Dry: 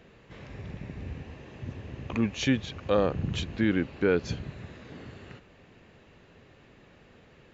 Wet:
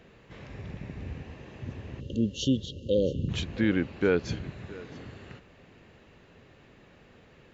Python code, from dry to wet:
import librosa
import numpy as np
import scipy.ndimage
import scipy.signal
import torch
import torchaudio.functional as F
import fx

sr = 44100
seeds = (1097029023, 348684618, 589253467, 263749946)

y = fx.spec_erase(x, sr, start_s=2.0, length_s=1.29, low_hz=600.0, high_hz=2700.0)
y = y + 10.0 ** (-19.5 / 20.0) * np.pad(y, (int(669 * sr / 1000.0), 0))[:len(y)]